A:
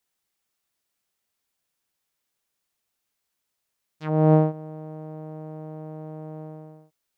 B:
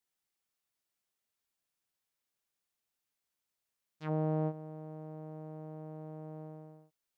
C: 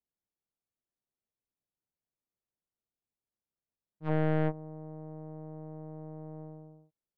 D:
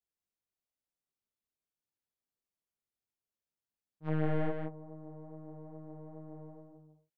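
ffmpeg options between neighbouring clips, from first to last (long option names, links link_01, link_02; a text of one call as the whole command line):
ffmpeg -i in.wav -af "alimiter=limit=-15.5dB:level=0:latency=1:release=24,volume=-8dB" out.wav
ffmpeg -i in.wav -af "adynamicsmooth=sensitivity=1:basefreq=680,aeval=exprs='0.0596*(cos(1*acos(clip(val(0)/0.0596,-1,1)))-cos(1*PI/2))+0.00668*(cos(3*acos(clip(val(0)/0.0596,-1,1)))-cos(3*PI/2))+0.0119*(cos(4*acos(clip(val(0)/0.0596,-1,1)))-cos(4*PI/2))':channel_layout=same,volume=5dB" out.wav
ffmpeg -i in.wav -af "flanger=delay=18.5:depth=2.8:speed=2.4,aecho=1:1:170:0.562,volume=-1.5dB" out.wav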